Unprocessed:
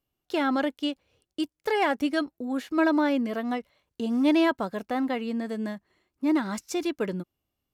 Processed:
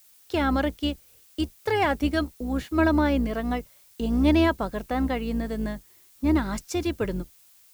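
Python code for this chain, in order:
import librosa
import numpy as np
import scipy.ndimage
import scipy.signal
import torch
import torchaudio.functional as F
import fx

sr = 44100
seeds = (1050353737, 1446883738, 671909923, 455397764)

y = fx.octave_divider(x, sr, octaves=2, level_db=-3.0)
y = fx.dmg_noise_colour(y, sr, seeds[0], colour='blue', level_db=-57.0)
y = F.gain(torch.from_numpy(y), 1.0).numpy()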